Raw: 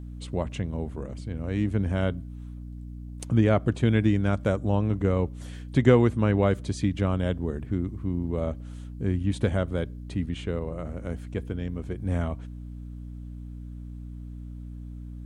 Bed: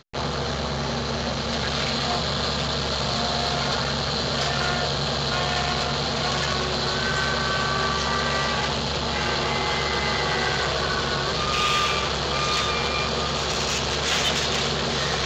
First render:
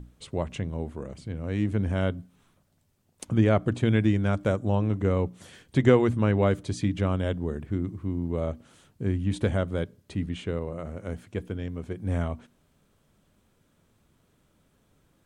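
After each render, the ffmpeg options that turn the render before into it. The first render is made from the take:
-af "bandreject=f=60:t=h:w=6,bandreject=f=120:t=h:w=6,bandreject=f=180:t=h:w=6,bandreject=f=240:t=h:w=6,bandreject=f=300:t=h:w=6"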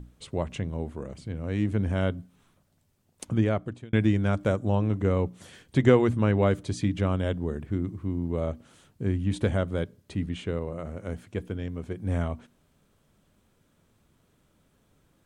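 -filter_complex "[0:a]asplit=2[a][b];[a]atrim=end=3.93,asetpts=PTS-STARTPTS,afade=t=out:st=3.24:d=0.69[c];[b]atrim=start=3.93,asetpts=PTS-STARTPTS,afade=t=in:d=0.004:c=hsin[d];[c][d]concat=n=2:v=0:a=1"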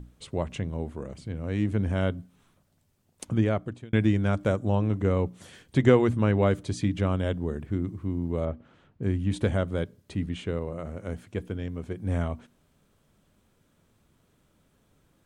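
-filter_complex "[0:a]asettb=1/sr,asplit=3[a][b][c];[a]atrim=end=8.454[d];[b]atrim=start=8.45:end=9.03,asetpts=PTS-STARTPTS,afade=t=in:d=0.004:c=qsin,afade=t=out:st=0.576:d=0.004:c=qsin,lowpass=2.3k[e];[c]atrim=start=9.026[f];[d][e]acrossfade=d=0.004:c1=hsin:c2=qsin[g];[g][f]acrossfade=d=0.004:c1=qsin:c2=hsin"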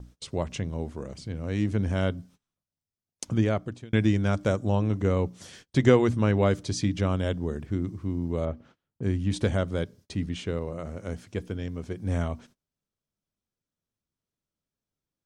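-af "agate=range=-26dB:threshold=-51dB:ratio=16:detection=peak,equalizer=f=5.4k:w=1.6:g=10"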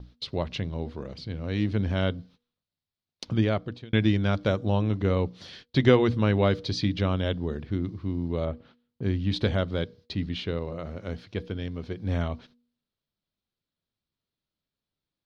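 -af "highshelf=f=5.8k:t=q:w=3:g=-12.5,bandreject=f=240.3:t=h:w=4,bandreject=f=480.6:t=h:w=4"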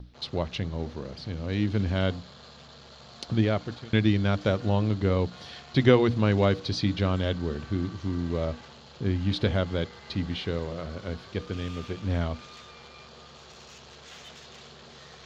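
-filter_complex "[1:a]volume=-24dB[a];[0:a][a]amix=inputs=2:normalize=0"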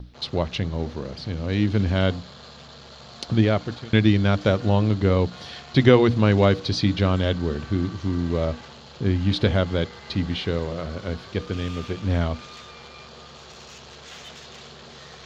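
-af "volume=5dB,alimiter=limit=-3dB:level=0:latency=1"

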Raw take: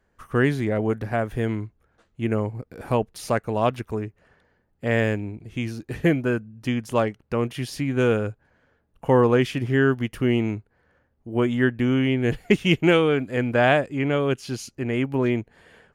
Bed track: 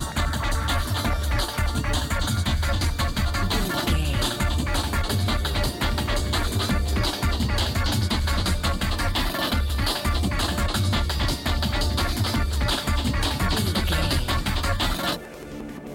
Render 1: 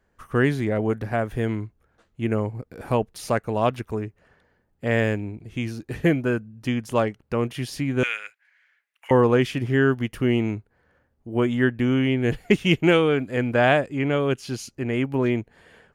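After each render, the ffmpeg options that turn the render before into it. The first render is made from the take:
-filter_complex "[0:a]asettb=1/sr,asplit=3[a][b][c];[a]atrim=end=8.034[d];[b]atrim=start=8.03:end=9.11,asetpts=PTS-STARTPTS,afade=t=in:d=0.004:c=qsin,afade=t=out:st=1.076:d=0.004:c=qsin,highpass=f=2.1k:t=q:w=4.4[e];[c]atrim=start=9.106[f];[d][e]acrossfade=d=0.004:c1=hsin:c2=qsin[g];[g][f]acrossfade=d=0.004:c1=qsin:c2=hsin"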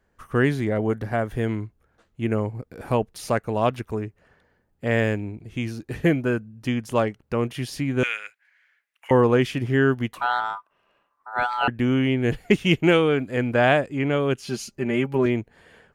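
-filter_complex "[0:a]asettb=1/sr,asplit=3[a][b][c];[a]atrim=end=0.644[d];[b]atrim=start=0.64:end=1.35,asetpts=PTS-STARTPTS,afade=t=in:d=0.004:c=qsin,afade=t=out:st=0.706:d=0.004:c=qsin,bandreject=f=2.5k:w=12[e];[c]atrim=start=1.346[f];[d][e]acrossfade=d=0.004:c1=hsin:c2=qsin[g];[g][f]acrossfade=d=0.004:c1=qsin:c2=hsin,asettb=1/sr,asplit=3[h][i][j];[h]atrim=end=10.134[k];[i]atrim=start=10.13:end=11.68,asetpts=PTS-STARTPTS,afade=t=in:d=0.004:c=qsin,afade=t=out:st=1.546:d=0.004:c=qsin,aeval=exprs='val(0)*sin(2*PI*1100*n/s)':c=same[l];[j]atrim=start=11.676[m];[k][l]acrossfade=d=0.004:c1=hsin:c2=qsin[n];[n][m]acrossfade=d=0.004:c1=qsin:c2=hsin,asettb=1/sr,asplit=3[o][p][q];[o]atrim=end=14.464[r];[p]atrim=start=14.46:end=15.26,asetpts=PTS-STARTPTS,afade=t=in:d=0.004:c=qsin,afade=t=out:st=0.796:d=0.004:c=qsin,aecho=1:1:5.1:0.68,atrim=end_sample=35280[s];[q]atrim=start=15.256[t];[r][s]acrossfade=d=0.004:c1=hsin:c2=qsin[u];[u][t]acrossfade=d=0.004:c1=qsin:c2=hsin"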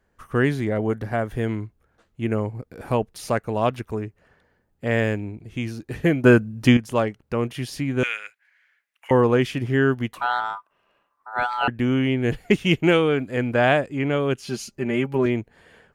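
-filter_complex "[0:a]asplit=3[a][b][c];[a]atrim=end=6.242[d];[b]atrim=start=6.238:end=6.772,asetpts=PTS-STARTPTS,volume=10dB[e];[c]atrim=start=6.768[f];[d][e]acrossfade=d=0.004:c1=hsin:c2=hsin[g];[g][f]acrossfade=d=0.004:c1=hsin:c2=hsin"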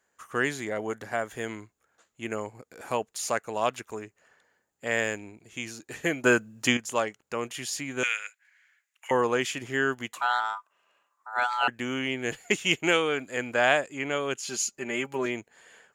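-af "highpass=f=940:p=1,equalizer=f=7k:w=4.3:g=14.5"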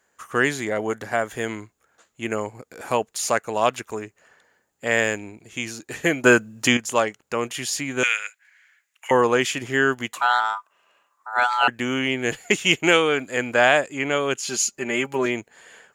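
-af "volume=6.5dB,alimiter=limit=-2dB:level=0:latency=1"

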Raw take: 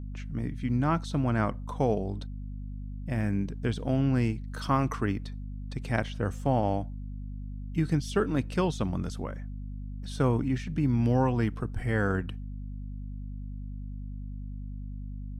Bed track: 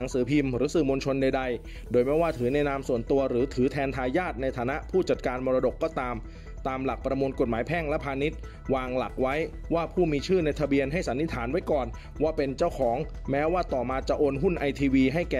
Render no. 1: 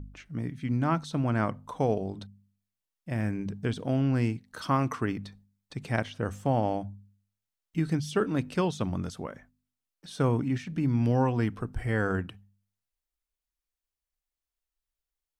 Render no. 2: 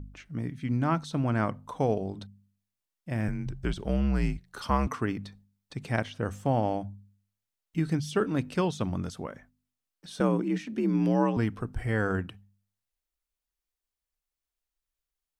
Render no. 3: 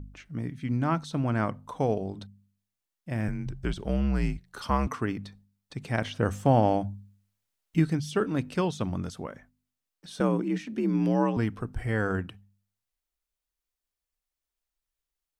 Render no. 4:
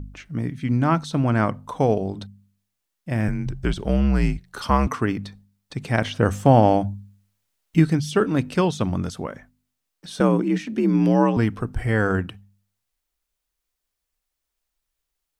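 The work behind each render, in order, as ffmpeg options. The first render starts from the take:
-af "bandreject=f=50:t=h:w=4,bandreject=f=100:t=h:w=4,bandreject=f=150:t=h:w=4,bandreject=f=200:t=h:w=4,bandreject=f=250:t=h:w=4"
-filter_complex "[0:a]asettb=1/sr,asplit=3[a][b][c];[a]atrim=end=3.284[d];[b]atrim=start=3.28:end=4.87,asetpts=PTS-STARTPTS,afade=t=in:d=0.004:c=qsin,afade=t=out:st=1.586:d=0.004:c=qsin,afreqshift=-69[e];[c]atrim=start=4.866[f];[d][e]acrossfade=d=0.004:c1=hsin:c2=qsin[g];[g][f]acrossfade=d=0.004:c1=qsin:c2=hsin,asettb=1/sr,asplit=3[h][i][j];[h]atrim=end=10.204[k];[i]atrim=start=10.2:end=11.37,asetpts=PTS-STARTPTS,afade=t=in:d=0.004:c=qsin,afade=t=out:st=1.166:d=0.004:c=qsin,afreqshift=58[l];[j]atrim=start=11.366[m];[k][l]acrossfade=d=0.004:c1=hsin:c2=qsin[n];[n][m]acrossfade=d=0.004:c1=qsin:c2=hsin"
-filter_complex "[0:a]asettb=1/sr,asplit=3[a][b][c];[a]atrim=end=6.024[d];[b]atrim=start=6.02:end=7.85,asetpts=PTS-STARTPTS,afade=t=in:d=0.004:c=qsin,afade=t=out:st=1.826:d=0.004:c=qsin,acontrast=28[e];[c]atrim=start=7.846[f];[d][e]acrossfade=d=0.004:c1=hsin:c2=qsin[g];[g][f]acrossfade=d=0.004:c1=qsin:c2=hsin"
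-af "volume=7dB"

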